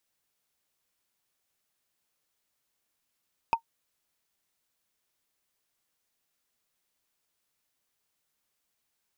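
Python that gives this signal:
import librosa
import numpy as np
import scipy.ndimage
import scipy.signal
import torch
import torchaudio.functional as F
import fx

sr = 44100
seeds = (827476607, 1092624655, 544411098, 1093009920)

y = fx.strike_wood(sr, length_s=0.45, level_db=-15.0, body='bar', hz=918.0, decay_s=0.09, tilt_db=9, modes=5)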